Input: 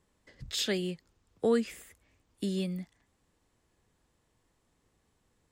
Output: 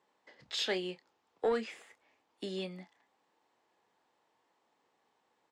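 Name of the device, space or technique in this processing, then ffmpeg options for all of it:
intercom: -filter_complex "[0:a]highpass=380,lowpass=4700,equalizer=f=850:t=o:w=0.53:g=8,asoftclip=type=tanh:threshold=0.0794,asplit=2[s0][s1];[s1]adelay=27,volume=0.266[s2];[s0][s2]amix=inputs=2:normalize=0"

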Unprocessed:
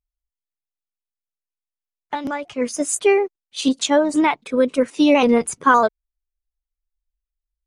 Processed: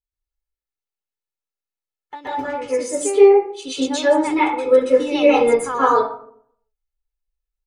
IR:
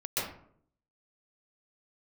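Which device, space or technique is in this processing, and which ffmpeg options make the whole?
microphone above a desk: -filter_complex "[0:a]aecho=1:1:2.3:0.66[s0];[1:a]atrim=start_sample=2205[s1];[s0][s1]afir=irnorm=-1:irlink=0,volume=0.398"

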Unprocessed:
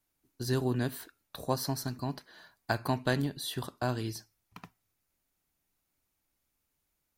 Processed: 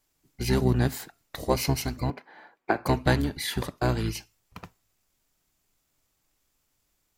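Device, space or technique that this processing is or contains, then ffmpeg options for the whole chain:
octave pedal: -filter_complex "[0:a]asplit=2[s0][s1];[s1]asetrate=22050,aresample=44100,atempo=2,volume=0.794[s2];[s0][s2]amix=inputs=2:normalize=0,asettb=1/sr,asplit=3[s3][s4][s5];[s3]atrim=end=2.104[s6];[s4]atrim=start=2.1:end=2.86,asetpts=PTS-STARTPTS,afade=t=in:d=0.004:c=qsin,afade=t=out:st=0.756:d=0.004:c=qsin,acrossover=split=200 2600:gain=0.0631 1 0.112[s7][s8][s9];[s7][s8][s9]amix=inputs=3:normalize=0[s10];[s5]atrim=start=2.856[s11];[s6][s10]acrossfade=d=0.004:c1=hsin:c2=qsin[s12];[s12][s11]acrossfade=d=0.004:c1=qsin:c2=hsin,volume=1.68"

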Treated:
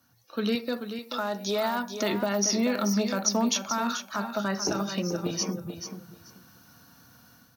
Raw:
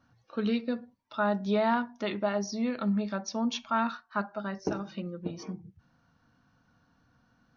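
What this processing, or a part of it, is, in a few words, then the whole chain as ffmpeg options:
FM broadcast chain: -filter_complex "[0:a]highpass=74,dynaudnorm=f=350:g=3:m=3.55,acrossover=split=310|2000|5600[s0][s1][s2][s3];[s0]acompressor=threshold=0.0398:ratio=4[s4];[s1]acompressor=threshold=0.0708:ratio=4[s5];[s2]acompressor=threshold=0.00562:ratio=4[s6];[s3]acompressor=threshold=0.01:ratio=4[s7];[s4][s5][s6][s7]amix=inputs=4:normalize=0,aemphasis=mode=production:type=50fm,alimiter=limit=0.141:level=0:latency=1:release=27,asoftclip=type=hard:threshold=0.126,lowpass=f=15000:w=0.5412,lowpass=f=15000:w=1.3066,aemphasis=mode=production:type=50fm,asettb=1/sr,asplit=3[s8][s9][s10];[s8]atrim=end=0.554[s11];[s9]atrim=start=0.55:end=1.94,asetpts=PTS-STARTPTS,afade=t=in:d=0.004:c=qsin,afade=t=out:st=1.386:d=0.004:c=qsin,equalizer=f=150:t=o:w=1.1:g=-11[s12];[s10]atrim=start=1.936[s13];[s11][s12]acrossfade=d=0.004:c1=hsin:c2=qsin[s14];[s14][s13]acrossfade=d=0.004:c1=qsin:c2=hsin,aecho=1:1:435|870|1305:0.355|0.0603|0.0103,volume=0.891"

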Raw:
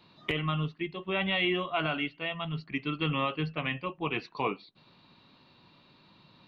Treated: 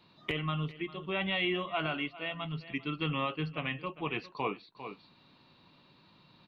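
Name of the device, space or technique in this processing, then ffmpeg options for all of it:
ducked delay: -filter_complex "[0:a]asplit=3[s0][s1][s2];[s1]adelay=400,volume=0.501[s3];[s2]apad=whole_len=303242[s4];[s3][s4]sidechaincompress=threshold=0.00794:ratio=8:attack=22:release=427[s5];[s0][s5]amix=inputs=2:normalize=0,volume=0.708"

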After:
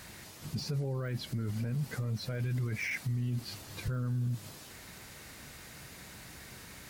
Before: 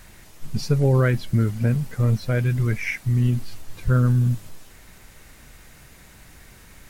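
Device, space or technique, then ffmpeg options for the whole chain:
broadcast voice chain: -af "highpass=83,deesser=0.9,acompressor=threshold=0.0501:ratio=3,equalizer=f=4500:t=o:w=0.59:g=4,alimiter=level_in=1.41:limit=0.0631:level=0:latency=1:release=17,volume=0.708"

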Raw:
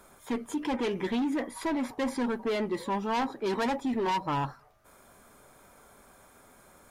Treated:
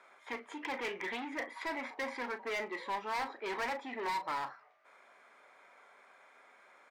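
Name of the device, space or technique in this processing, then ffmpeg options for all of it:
megaphone: -filter_complex "[0:a]highpass=580,lowpass=3700,equalizer=f=2100:t=o:w=0.51:g=9,asoftclip=type=hard:threshold=0.0376,asplit=2[s0][s1];[s1]adelay=37,volume=0.251[s2];[s0][s2]amix=inputs=2:normalize=0,volume=0.708"

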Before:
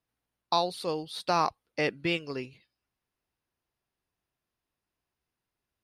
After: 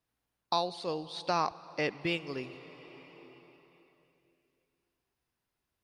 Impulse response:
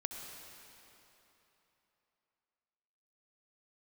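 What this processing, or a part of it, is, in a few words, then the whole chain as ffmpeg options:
ducked reverb: -filter_complex "[0:a]asplit=3[s0][s1][s2];[1:a]atrim=start_sample=2205[s3];[s1][s3]afir=irnorm=-1:irlink=0[s4];[s2]apad=whole_len=257120[s5];[s4][s5]sidechaincompress=threshold=0.0178:ratio=10:attack=16:release=1190,volume=1.19[s6];[s0][s6]amix=inputs=2:normalize=0,asettb=1/sr,asplit=3[s7][s8][s9];[s7]atrim=end=0.684[s10];[s8]atrim=start=0.68:end=2.01,asetpts=PTS-STARTPTS,afade=t=in:d=0.004:c=qsin,afade=t=out:st=1.326:d=0.004:c=qsin,lowpass=f=8000:w=0.5412,lowpass=f=8000:w=1.3066[s11];[s9]atrim=start=2.006[s12];[s10][s11]acrossfade=d=0.004:c1=hsin:c2=qsin[s13];[s13][s12]acrossfade=d=0.004:c1=qsin:c2=hsin,volume=0.562"

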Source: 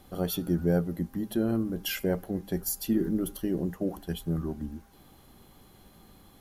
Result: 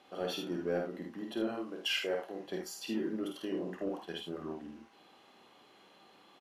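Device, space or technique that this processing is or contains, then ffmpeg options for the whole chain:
intercom: -filter_complex "[0:a]asettb=1/sr,asplit=3[s0][s1][s2];[s0]atrim=end=1.474[s3];[s1]atrim=start=1.47:end=2.4,asetpts=PTS-STARTPTS,afade=t=in:d=0.004:c=qsin,afade=t=out:st=0.926:d=0.004:c=qsin,bass=f=250:g=-13,treble=f=4000:g=2[s4];[s2]atrim=start=2.396[s5];[s3][s4]acrossfade=d=0.004:c1=hsin:c2=qsin[s6];[s6][s5]acrossfade=d=0.004:c1=qsin:c2=hsin,highpass=410,lowpass=4700,equalizer=f=2700:t=o:w=0.3:g=7,aecho=1:1:51|77:0.631|0.422,asoftclip=type=tanh:threshold=0.0841,asplit=2[s7][s8];[s8]adelay=27,volume=0.251[s9];[s7][s9]amix=inputs=2:normalize=0,volume=0.794"

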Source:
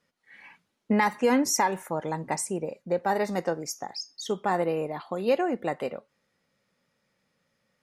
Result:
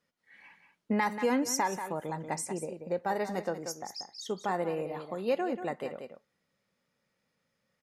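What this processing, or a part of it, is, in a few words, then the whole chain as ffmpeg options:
ducked delay: -filter_complex "[0:a]asplit=3[s0][s1][s2];[s1]adelay=185,volume=0.422[s3];[s2]apad=whole_len=353245[s4];[s3][s4]sidechaincompress=threshold=0.0355:ratio=8:attack=29:release=235[s5];[s0][s5]amix=inputs=2:normalize=0,volume=0.531"

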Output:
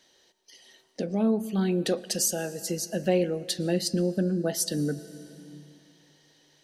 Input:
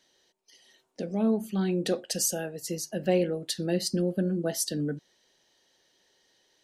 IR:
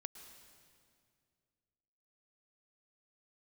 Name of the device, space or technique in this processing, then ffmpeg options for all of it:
ducked reverb: -filter_complex "[0:a]asplit=3[s0][s1][s2];[1:a]atrim=start_sample=2205[s3];[s1][s3]afir=irnorm=-1:irlink=0[s4];[s2]apad=whole_len=292742[s5];[s4][s5]sidechaincompress=threshold=0.0282:ratio=8:attack=10:release=879,volume=1.68[s6];[s0][s6]amix=inputs=2:normalize=0,volume=0.891"

